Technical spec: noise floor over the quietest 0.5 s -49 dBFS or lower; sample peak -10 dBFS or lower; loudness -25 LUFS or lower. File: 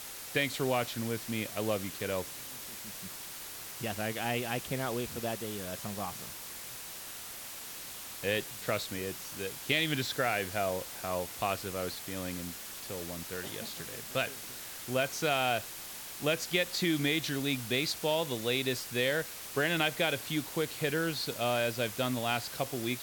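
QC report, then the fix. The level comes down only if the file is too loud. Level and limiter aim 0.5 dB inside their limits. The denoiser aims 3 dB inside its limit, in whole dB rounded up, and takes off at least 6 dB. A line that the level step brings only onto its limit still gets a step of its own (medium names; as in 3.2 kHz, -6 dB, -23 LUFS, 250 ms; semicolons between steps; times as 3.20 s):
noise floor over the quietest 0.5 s -44 dBFS: fail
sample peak -14.0 dBFS: pass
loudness -33.5 LUFS: pass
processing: noise reduction 8 dB, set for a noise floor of -44 dBFS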